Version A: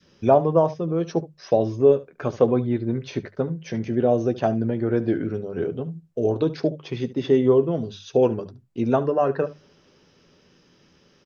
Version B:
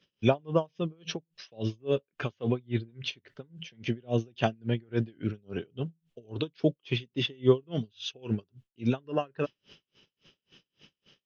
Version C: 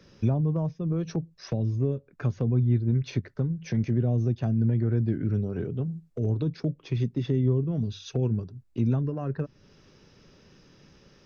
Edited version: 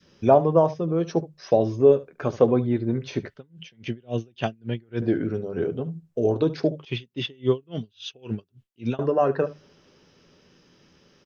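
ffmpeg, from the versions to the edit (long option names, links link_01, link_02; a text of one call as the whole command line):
ffmpeg -i take0.wav -i take1.wav -filter_complex "[1:a]asplit=2[link_01][link_02];[0:a]asplit=3[link_03][link_04][link_05];[link_03]atrim=end=3.302[link_06];[link_01]atrim=start=3.298:end=5.022[link_07];[link_04]atrim=start=5.018:end=6.852[link_08];[link_02]atrim=start=6.848:end=8.992[link_09];[link_05]atrim=start=8.988[link_10];[link_06][link_07]acrossfade=duration=0.004:curve1=hsin:curve2=hsin[link_11];[link_11][link_08]acrossfade=duration=0.004:curve1=hsin:curve2=hsin[link_12];[link_12][link_09]acrossfade=duration=0.004:curve1=hsin:curve2=hsin[link_13];[link_13][link_10]acrossfade=duration=0.004:curve1=hsin:curve2=hsin" out.wav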